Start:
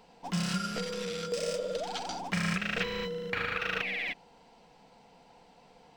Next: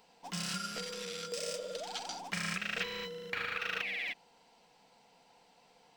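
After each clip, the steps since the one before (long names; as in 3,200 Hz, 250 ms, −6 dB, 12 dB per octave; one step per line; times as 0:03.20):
spectral tilt +2 dB per octave
level −5.5 dB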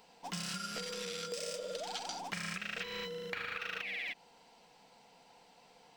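downward compressor, threshold −39 dBFS, peak gain reduction 8.5 dB
level +2.5 dB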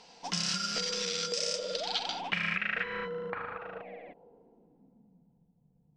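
low-pass filter sweep 5,700 Hz → 140 Hz, 0:01.59–0:05.54
level +4.5 dB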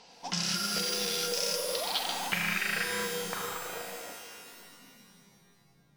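reverb with rising layers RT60 2.1 s, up +12 semitones, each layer −2 dB, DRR 6 dB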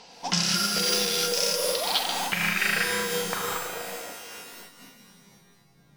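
amplitude modulation by smooth noise, depth 60%
level +8 dB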